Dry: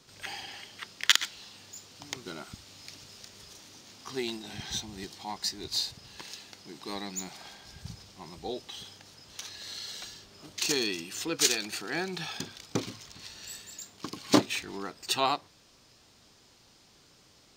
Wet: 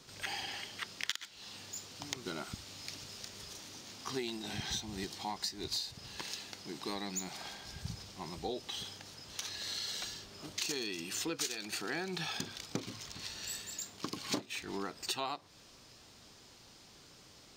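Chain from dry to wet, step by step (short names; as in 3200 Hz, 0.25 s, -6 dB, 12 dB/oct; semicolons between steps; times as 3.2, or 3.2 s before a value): compressor 8:1, threshold -36 dBFS, peak gain reduction 20.5 dB; gain +2 dB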